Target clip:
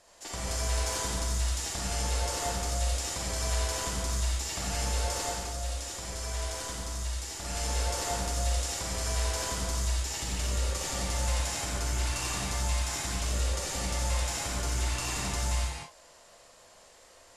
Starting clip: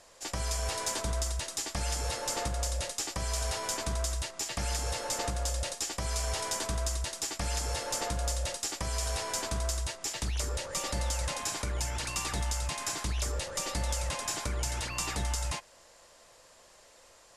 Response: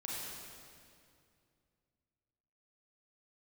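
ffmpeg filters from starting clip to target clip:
-filter_complex "[0:a]asettb=1/sr,asplit=3[a][b][c];[a]atrim=end=5.234[d];[b]atrim=start=5.23:end=7.45,asetpts=PTS-STARTPTS,afade=t=in:d=0.004:c=qsin,afade=t=out:st=2.216:d=0.004:c=qsin,flanger=delay=1.7:depth=2.1:regen=77:speed=1.1:shape=triangular[e];[c]atrim=start=7.446[f];[d][e]acrossfade=d=0.004:c1=hsin:c2=qsin[g];[g][f]acrossfade=d=0.004:c1=qsin:c2=hsin[h];[1:a]atrim=start_sample=2205,afade=t=out:st=0.3:d=0.01,atrim=end_sample=13671,asetrate=35721,aresample=44100[i];[h][i]afir=irnorm=-1:irlink=0"

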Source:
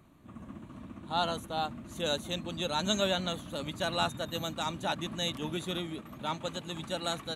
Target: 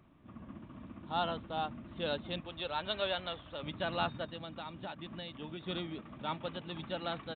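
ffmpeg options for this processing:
-filter_complex "[0:a]asettb=1/sr,asplit=3[a][b][c];[a]atrim=end=2.404[d];[b]atrim=start=2.4:end=3.63,asetpts=PTS-STARTPTS,afade=t=in:d=0.004:c=qsin,afade=t=out:st=1.226:d=0.004:c=qsin,equalizer=f=210:w=1.3:g=-14[e];[c]atrim=start=3.626[f];[d][e]acrossfade=d=0.004:c1=hsin:c2=qsin[g];[g][f]acrossfade=d=0.004:c1=qsin:c2=hsin,asplit=3[h][i][j];[h]afade=t=out:st=4.25:d=0.02[k];[i]acompressor=threshold=-37dB:ratio=6,afade=t=in:st=4.25:d=0.02,afade=t=out:st=5.65:d=0.02[l];[j]afade=t=in:st=5.65:d=0.02[m];[k][l][m]amix=inputs=3:normalize=0,aresample=8000,aresample=44100,volume=-3dB"

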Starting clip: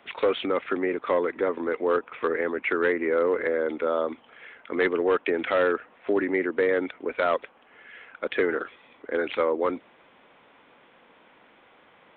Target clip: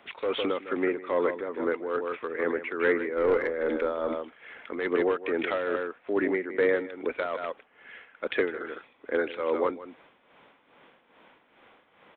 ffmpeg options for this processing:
-filter_complex "[0:a]aecho=1:1:156:0.335,tremolo=f=2.4:d=0.67,asettb=1/sr,asplit=3[a][b][c];[a]atrim=end=3.164[d];[b]atrim=start=3.16:end=4.8,asetpts=PTS-STARTPTS,afade=t=in:d=0.004:c=qsin,afade=t=out:st=1.636:d=0.004:c=qsin,aeval=exprs='0.224*(cos(1*acos(clip(val(0)/0.224,-1,1)))-cos(1*PI/2))+0.00794*(cos(4*acos(clip(val(0)/0.224,-1,1)))-cos(4*PI/2))+0.0158*(cos(5*acos(clip(val(0)/0.224,-1,1)))-cos(5*PI/2))':c=same[e];[c]atrim=start=4.796[f];[d][e]acrossfade=d=0.004:c1=hsin:c2=qsin[g];[g][f]acrossfade=d=0.004:c1=qsin:c2=hsin"

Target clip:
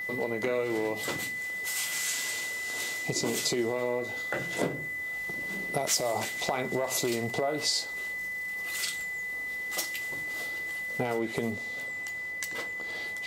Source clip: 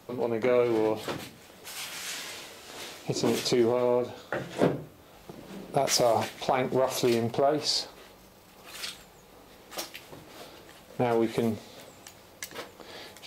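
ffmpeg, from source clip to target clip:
-af "adynamicequalizer=threshold=0.00158:dfrequency=7500:dqfactor=3.8:tfrequency=7500:tqfactor=3.8:attack=5:release=100:ratio=0.375:range=2.5:mode=boostabove:tftype=bell,aeval=exprs='val(0)+0.02*sin(2*PI*2000*n/s)':c=same,asetnsamples=n=441:p=0,asendcmd='11.19 highshelf g 2',highshelf=f=4.7k:g=10,acompressor=threshold=-28dB:ratio=2.5"

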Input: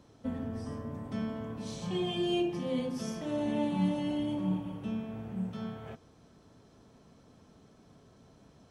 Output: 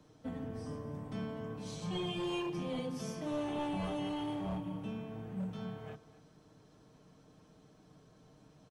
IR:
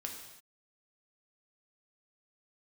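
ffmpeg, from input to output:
-filter_complex "[0:a]aecho=1:1:6.5:0.49,acrossover=split=150|460|2500[a][b][c][d];[b]aeval=exprs='0.0224*(abs(mod(val(0)/0.0224+3,4)-2)-1)':c=same[e];[a][e][c][d]amix=inputs=4:normalize=0,aecho=1:1:252:0.15,volume=-3.5dB"

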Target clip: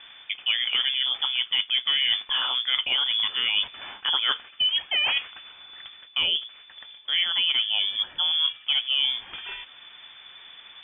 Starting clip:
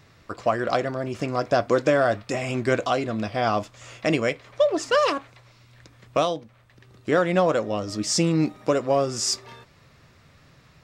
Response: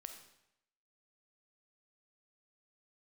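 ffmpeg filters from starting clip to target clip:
-af "areverse,acompressor=threshold=-30dB:ratio=6,areverse,lowpass=f=3.1k:t=q:w=0.5098,lowpass=f=3.1k:t=q:w=0.6013,lowpass=f=3.1k:t=q:w=0.9,lowpass=f=3.1k:t=q:w=2.563,afreqshift=-3600,volume=8dB"

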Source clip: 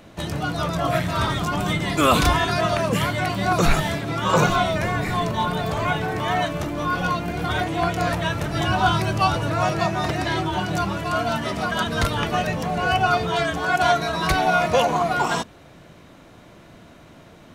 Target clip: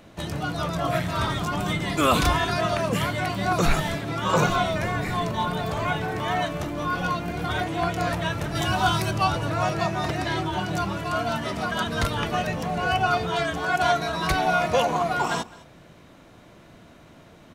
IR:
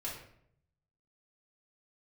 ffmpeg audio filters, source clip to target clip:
-filter_complex "[0:a]asettb=1/sr,asplit=3[a][b][c];[a]atrim=end=8.554[d];[b]atrim=start=8.55:end=9.11,asetpts=PTS-STARTPTS,afade=t=in:d=0.004:c=qsin,afade=t=out:st=0.556:d=0.004:c=qsin,aemphasis=mode=production:type=cd[e];[c]atrim=start=9.106[f];[d][e]acrossfade=d=0.004:c1=hsin:c2=qsin[g];[g][f]acrossfade=d=0.004:c1=qsin:c2=hsin,aecho=1:1:210:0.0841,volume=-3dB"

